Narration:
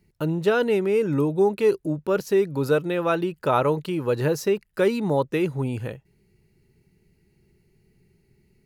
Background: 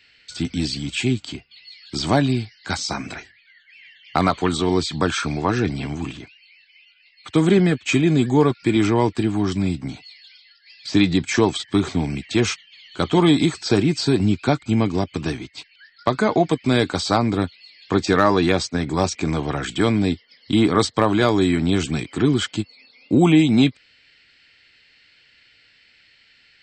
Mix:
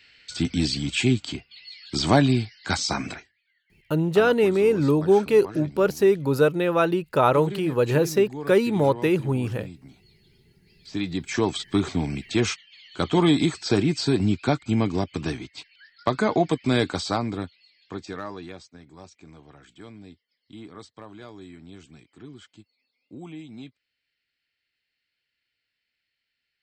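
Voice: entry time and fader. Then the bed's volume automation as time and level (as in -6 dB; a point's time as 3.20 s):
3.70 s, +2.0 dB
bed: 3.10 s 0 dB
3.31 s -18.5 dB
10.55 s -18.5 dB
11.59 s -3.5 dB
16.85 s -3.5 dB
18.86 s -25.5 dB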